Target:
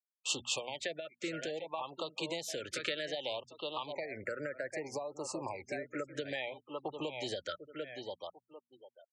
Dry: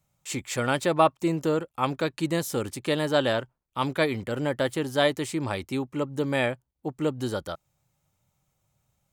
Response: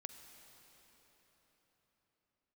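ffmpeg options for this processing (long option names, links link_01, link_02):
-filter_complex "[0:a]acrossover=split=490 3900:gain=0.1 1 0.1[link_01][link_02][link_03];[link_01][link_02][link_03]amix=inputs=3:normalize=0,aecho=1:1:745|1490:0.224|0.0381,alimiter=limit=-17dB:level=0:latency=1:release=167,asettb=1/sr,asplit=3[link_04][link_05][link_06];[link_04]atrim=end=3.924[link_07];[link_05]atrim=start=3.92:end=6.15,asetpts=PTS-STARTPTS,afade=type=in:duration=0.004:curve=qsin,afade=type=out:start_time=2.226:duration=0.004:curve=qsin,asuperstop=centerf=3300:order=4:qfactor=1.2[link_08];[link_06]atrim=start=6.146[link_09];[link_07][link_08]acrossfade=duration=0.004:curve1=hsin:curve2=qsin[link_10];[link_10][link_09]acrossfade=duration=0.004:curve1=qsin:curve2=hsin,acompressor=threshold=-38dB:ratio=4,equalizer=frequency=6600:width=1.3:gain=7.5,acrusher=bits=11:mix=0:aa=0.000001,acrossover=split=130|3000[link_11][link_12][link_13];[link_12]acompressor=threshold=-46dB:ratio=3[link_14];[link_11][link_14][link_13]amix=inputs=3:normalize=0,afftfilt=real='re*gte(hypot(re,im),0.001)':imag='im*gte(hypot(re,im),0.001)':win_size=1024:overlap=0.75,bandreject=frequency=60:width_type=h:width=6,bandreject=frequency=120:width_type=h:width=6,bandreject=frequency=180:width_type=h:width=6,bandreject=frequency=240:width_type=h:width=6,afftfilt=real='re*(1-between(b*sr/1024,870*pow(1900/870,0.5+0.5*sin(2*PI*0.62*pts/sr))/1.41,870*pow(1900/870,0.5+0.5*sin(2*PI*0.62*pts/sr))*1.41))':imag='im*(1-between(b*sr/1024,870*pow(1900/870,0.5+0.5*sin(2*PI*0.62*pts/sr))/1.41,870*pow(1900/870,0.5+0.5*sin(2*PI*0.62*pts/sr))*1.41))':win_size=1024:overlap=0.75,volume=8.5dB"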